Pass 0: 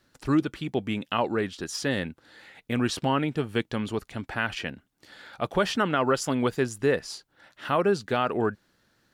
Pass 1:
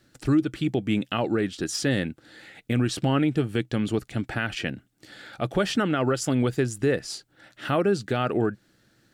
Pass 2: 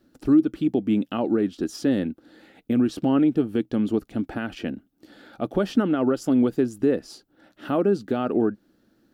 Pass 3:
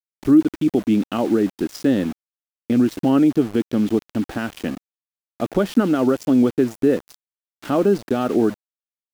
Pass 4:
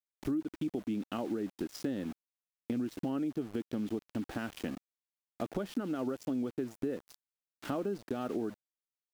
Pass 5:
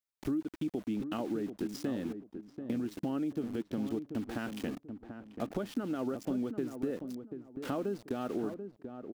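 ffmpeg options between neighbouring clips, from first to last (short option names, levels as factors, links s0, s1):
-af "equalizer=f=125:t=o:w=0.33:g=8,equalizer=f=200:t=o:w=0.33:g=3,equalizer=f=315:t=o:w=0.33:g=6,equalizer=f=1000:t=o:w=0.33:g=-9,equalizer=f=8000:t=o:w=0.33:g=4,alimiter=limit=0.15:level=0:latency=1:release=205,volume=1.41"
-af "equalizer=f=125:t=o:w=1:g=-10,equalizer=f=250:t=o:w=1:g=8,equalizer=f=2000:t=o:w=1:g=-9,equalizer=f=4000:t=o:w=1:g=-4,equalizer=f=8000:t=o:w=1:g=-11"
-af "aeval=exprs='val(0)*gte(abs(val(0)),0.0168)':c=same,volume=1.58"
-af "acompressor=threshold=0.0562:ratio=4,volume=0.398"
-filter_complex "[0:a]asplit=2[s0][s1];[s1]adelay=737,lowpass=f=830:p=1,volume=0.422,asplit=2[s2][s3];[s3]adelay=737,lowpass=f=830:p=1,volume=0.29,asplit=2[s4][s5];[s5]adelay=737,lowpass=f=830:p=1,volume=0.29,asplit=2[s6][s7];[s7]adelay=737,lowpass=f=830:p=1,volume=0.29[s8];[s0][s2][s4][s6][s8]amix=inputs=5:normalize=0"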